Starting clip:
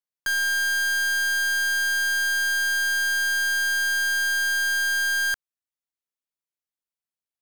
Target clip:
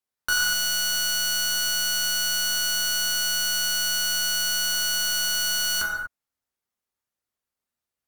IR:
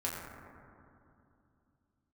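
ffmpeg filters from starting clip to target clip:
-filter_complex "[1:a]atrim=start_sample=2205,afade=t=out:st=0.28:d=0.01,atrim=end_sample=12789[s0];[0:a][s0]afir=irnorm=-1:irlink=0,asetrate=40517,aresample=44100,volume=1.58"

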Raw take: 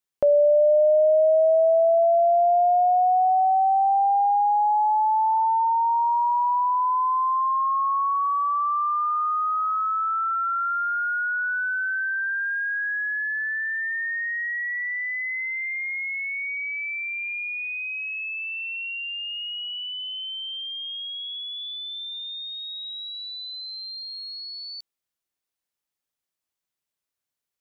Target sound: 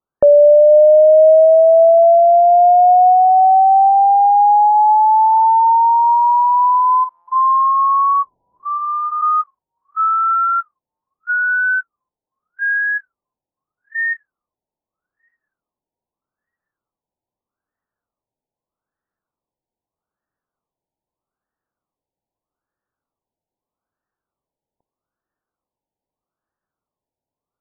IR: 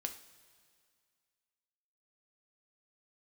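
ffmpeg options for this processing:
-filter_complex "[0:a]asplit=2[s0][s1];[1:a]atrim=start_sample=2205[s2];[s1][s2]afir=irnorm=-1:irlink=0,volume=0.168[s3];[s0][s3]amix=inputs=2:normalize=0,asplit=3[s4][s5][s6];[s4]afade=t=out:st=8.22:d=0.02[s7];[s5]aeval=exprs='0.126*sin(PI/2*8.91*val(0)/0.126)':c=same,afade=t=in:st=8.22:d=0.02,afade=t=out:st=9.21:d=0.02[s8];[s6]afade=t=in:st=9.21:d=0.02[s9];[s7][s8][s9]amix=inputs=3:normalize=0,afftfilt=real='re*lt(b*sr/1024,950*pow(1900/950,0.5+0.5*sin(2*PI*0.8*pts/sr)))':imag='im*lt(b*sr/1024,950*pow(1900/950,0.5+0.5*sin(2*PI*0.8*pts/sr)))':win_size=1024:overlap=0.75,volume=2.66"

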